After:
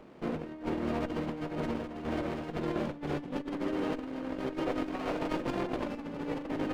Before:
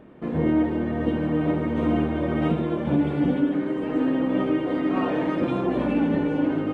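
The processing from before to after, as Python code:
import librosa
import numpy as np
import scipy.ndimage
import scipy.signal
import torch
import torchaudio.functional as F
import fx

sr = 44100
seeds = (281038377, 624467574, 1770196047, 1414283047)

y = fx.over_compress(x, sr, threshold_db=-26.0, ratio=-0.5)
y = fx.low_shelf(y, sr, hz=480.0, db=-11.5)
y = fx.running_max(y, sr, window=17)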